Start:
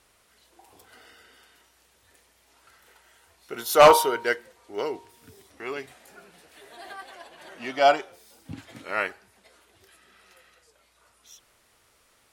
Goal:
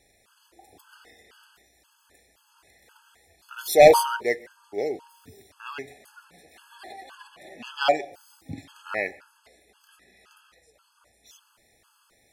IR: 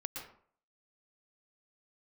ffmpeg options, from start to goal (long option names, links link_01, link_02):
-filter_complex "[0:a]asplit=2[link_01][link_02];[1:a]atrim=start_sample=2205[link_03];[link_02][link_03]afir=irnorm=-1:irlink=0,volume=-18.5dB[link_04];[link_01][link_04]amix=inputs=2:normalize=0,afftfilt=real='re*gt(sin(2*PI*1.9*pts/sr)*(1-2*mod(floor(b*sr/1024/860),2)),0)':imag='im*gt(sin(2*PI*1.9*pts/sr)*(1-2*mod(floor(b*sr/1024/860),2)),0)':win_size=1024:overlap=0.75,volume=1.5dB"